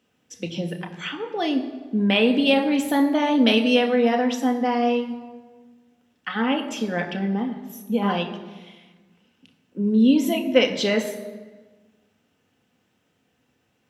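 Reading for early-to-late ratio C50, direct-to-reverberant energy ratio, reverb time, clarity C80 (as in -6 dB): 10.0 dB, 3.0 dB, 1.4 s, 11.5 dB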